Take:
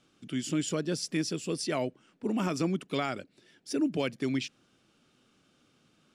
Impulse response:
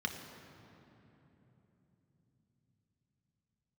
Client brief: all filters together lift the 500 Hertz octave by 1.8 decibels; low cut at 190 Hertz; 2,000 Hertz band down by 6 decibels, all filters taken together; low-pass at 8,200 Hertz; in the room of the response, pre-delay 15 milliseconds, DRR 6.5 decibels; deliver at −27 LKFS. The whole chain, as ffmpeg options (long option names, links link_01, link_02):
-filter_complex "[0:a]highpass=190,lowpass=8200,equalizer=frequency=500:width_type=o:gain=3,equalizer=frequency=2000:width_type=o:gain=-8,asplit=2[link_01][link_02];[1:a]atrim=start_sample=2205,adelay=15[link_03];[link_02][link_03]afir=irnorm=-1:irlink=0,volume=-10dB[link_04];[link_01][link_04]amix=inputs=2:normalize=0,volume=5dB"